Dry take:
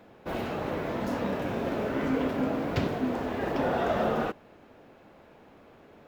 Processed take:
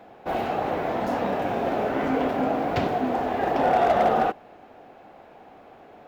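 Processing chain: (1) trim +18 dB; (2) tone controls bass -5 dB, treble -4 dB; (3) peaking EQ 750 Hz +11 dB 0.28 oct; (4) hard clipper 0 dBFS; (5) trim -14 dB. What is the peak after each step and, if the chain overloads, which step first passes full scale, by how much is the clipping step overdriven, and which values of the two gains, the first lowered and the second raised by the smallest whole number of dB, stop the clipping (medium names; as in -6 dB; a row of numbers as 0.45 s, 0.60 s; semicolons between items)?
+4.0 dBFS, +1.5 dBFS, +5.0 dBFS, 0.0 dBFS, -14.0 dBFS; step 1, 5.0 dB; step 1 +13 dB, step 5 -9 dB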